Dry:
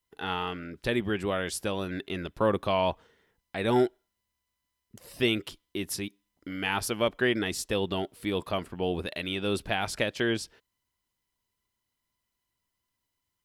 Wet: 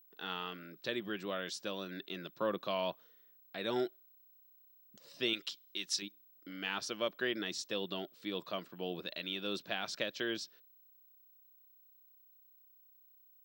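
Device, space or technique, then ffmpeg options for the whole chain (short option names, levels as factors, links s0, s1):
old television with a line whistle: -filter_complex "[0:a]asettb=1/sr,asplit=3[s0][s1][s2];[s0]atrim=end=5.334[s3];[s1]atrim=start=5.33:end=6.02,asetpts=PTS-STARTPTS,afade=t=in:d=0.004:c=qsin,afade=t=out:st=0.686:d=0.004:c=qsin,tiltshelf=f=1200:g=-8[s4];[s2]atrim=start=6.016[s5];[s3][s4]acrossfade=d=0.004:c1=hsin:c2=qsin[s6];[s6][s5]acrossfade=d=0.004:c1=qsin:c2=hsin,highpass=f=170:w=0.5412,highpass=f=170:w=1.3066,equalizer=f=240:t=q:w=4:g=-7,equalizer=f=420:t=q:w=4:g=-5,equalizer=f=840:t=q:w=4:g=-8,equalizer=f=2100:t=q:w=4:g=-4,equalizer=f=3900:t=q:w=4:g=6,equalizer=f=5600:t=q:w=4:g=4,lowpass=f=6900:w=0.5412,lowpass=f=6900:w=1.3066,aeval=exprs='val(0)+0.002*sin(2*PI*15734*n/s)':c=same,volume=0.447"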